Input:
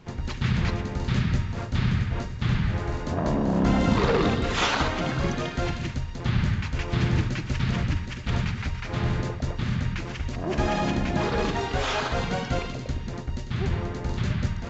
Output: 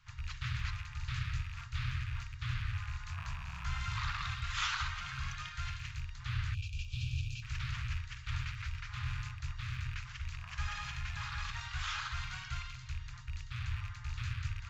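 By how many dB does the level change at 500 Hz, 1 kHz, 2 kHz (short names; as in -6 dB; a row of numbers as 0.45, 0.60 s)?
under -40 dB, -14.0 dB, -9.0 dB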